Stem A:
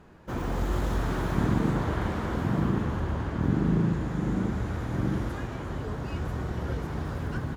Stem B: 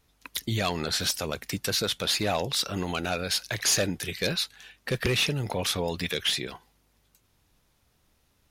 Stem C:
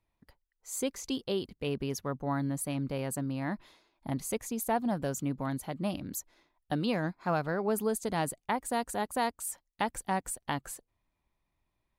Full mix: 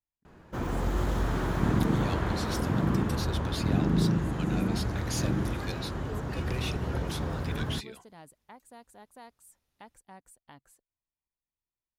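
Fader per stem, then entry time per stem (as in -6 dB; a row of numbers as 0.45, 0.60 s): -0.5, -12.5, -19.5 dB; 0.25, 1.45, 0.00 s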